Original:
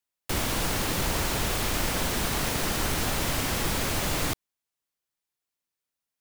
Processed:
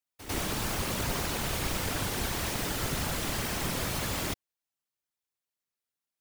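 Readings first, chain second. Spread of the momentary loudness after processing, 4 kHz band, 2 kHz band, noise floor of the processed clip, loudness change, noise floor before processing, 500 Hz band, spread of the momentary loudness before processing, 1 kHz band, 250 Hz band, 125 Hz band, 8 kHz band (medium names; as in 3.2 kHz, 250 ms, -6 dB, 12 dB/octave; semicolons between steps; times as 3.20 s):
2 LU, -4.5 dB, -4.5 dB, under -85 dBFS, -4.0 dB, under -85 dBFS, -4.0 dB, 2 LU, -4.5 dB, -3.5 dB, -3.5 dB, -4.5 dB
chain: whisper effect; pre-echo 98 ms -13 dB; trim -4.5 dB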